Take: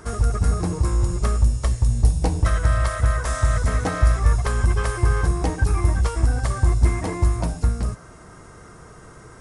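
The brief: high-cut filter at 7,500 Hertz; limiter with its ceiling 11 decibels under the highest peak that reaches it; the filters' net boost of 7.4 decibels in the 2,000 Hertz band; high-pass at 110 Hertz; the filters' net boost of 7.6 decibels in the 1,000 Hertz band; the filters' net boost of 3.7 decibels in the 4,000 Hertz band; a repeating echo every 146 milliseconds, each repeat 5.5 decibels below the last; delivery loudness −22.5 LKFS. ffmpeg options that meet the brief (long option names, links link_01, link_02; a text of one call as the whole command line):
ffmpeg -i in.wav -af "highpass=110,lowpass=7500,equalizer=frequency=1000:width_type=o:gain=7.5,equalizer=frequency=2000:width_type=o:gain=6,equalizer=frequency=4000:width_type=o:gain=3.5,alimiter=limit=-17.5dB:level=0:latency=1,aecho=1:1:146|292|438|584|730|876|1022:0.531|0.281|0.149|0.079|0.0419|0.0222|0.0118,volume=3.5dB" out.wav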